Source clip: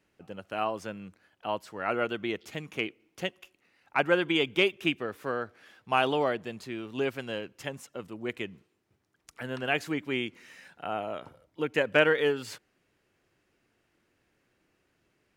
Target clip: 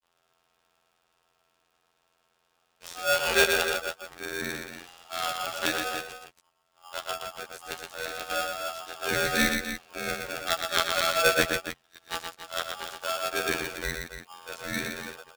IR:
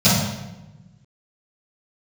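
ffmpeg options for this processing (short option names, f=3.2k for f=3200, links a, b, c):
-filter_complex "[0:a]areverse,afftfilt=real='hypot(re,im)*cos(PI*b)':imag='0':win_size=2048:overlap=0.75,asplit=2[a][b];[b]aecho=0:1:119.5|279.9:0.562|0.316[c];[a][c]amix=inputs=2:normalize=0,aeval=exprs='val(0)*sgn(sin(2*PI*1000*n/s))':c=same,volume=3dB"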